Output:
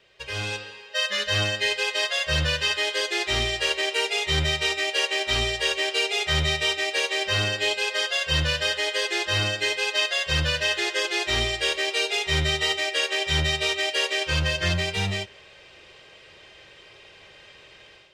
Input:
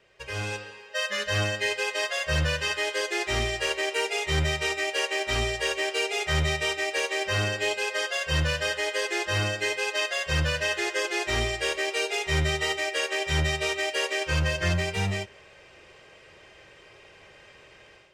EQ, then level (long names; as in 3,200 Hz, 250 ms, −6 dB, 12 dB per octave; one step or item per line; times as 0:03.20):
parametric band 3,700 Hz +9 dB 0.86 octaves
0.0 dB